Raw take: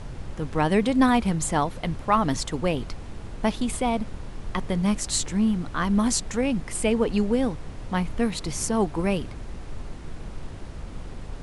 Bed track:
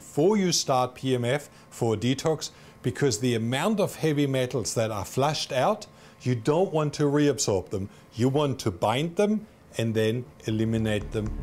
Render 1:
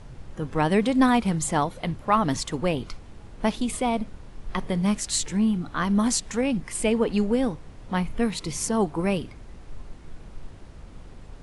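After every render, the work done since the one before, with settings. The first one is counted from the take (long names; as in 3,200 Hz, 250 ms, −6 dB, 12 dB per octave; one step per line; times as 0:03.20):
noise reduction from a noise print 7 dB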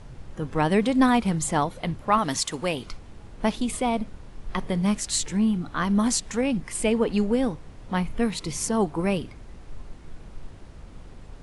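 0:02.18–0:02.86: spectral tilt +2 dB per octave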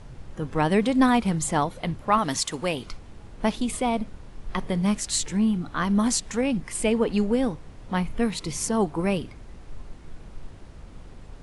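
no processing that can be heard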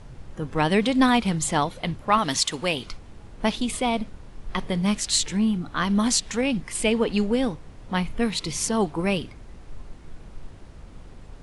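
dynamic equaliser 3,500 Hz, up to +7 dB, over −43 dBFS, Q 0.84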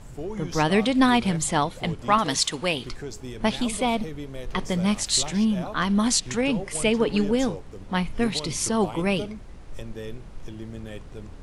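mix in bed track −12.5 dB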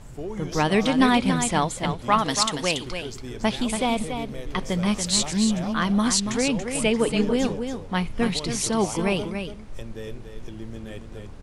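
single-tap delay 283 ms −7.5 dB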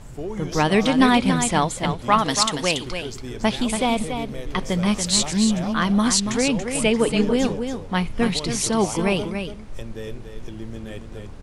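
level +2.5 dB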